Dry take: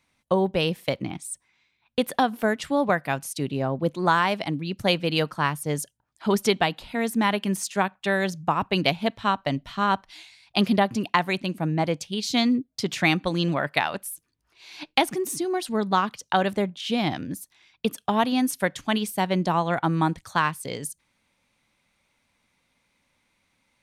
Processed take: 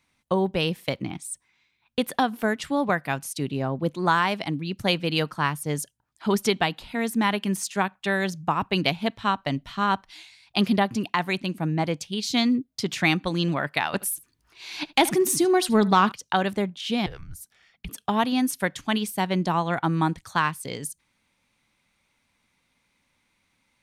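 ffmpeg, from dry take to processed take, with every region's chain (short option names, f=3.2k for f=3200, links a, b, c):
-filter_complex "[0:a]asettb=1/sr,asplit=3[a][b][c];[a]atrim=end=13.934[d];[b]atrim=start=13.93:end=16.12,asetpts=PTS-STARTPTS,afade=t=in:d=0.004:c=qsin,afade=t=out:st=2.186:d=0.004:c=qsin,acontrast=82,aecho=1:1:76:0.0891,atrim=end_sample=96579[e];[c]atrim=start=16.116[f];[d][e]acrossfade=d=0.004:c1=hsin:c2=qsin[g];[g][f]acrossfade=d=0.004:c1=qsin:c2=hsin,asettb=1/sr,asplit=3[h][i][j];[h]atrim=end=17.064[k];[i]atrim=start=17.06:end=17.89,asetpts=PTS-STARTPTS,afade=t=in:d=0.004:c=qsin,afade=t=out:st=0.826:d=0.004:c=qsin,equalizer=f=3.7k:w=2.1:g=-4.5,acompressor=threshold=-37dB:ratio=2.5:attack=3.2:release=140:knee=1:detection=peak,afreqshift=-270[l];[j]atrim=start=17.886[m];[k][l]acrossfade=d=0.004:c1=hsin:c2=qsin[n];[n][m]acrossfade=d=0.004:c1=qsin:c2=hsin,equalizer=f=580:w=2:g=-3.5,alimiter=level_in=7.5dB:limit=-1dB:release=50:level=0:latency=1,volume=-7.5dB"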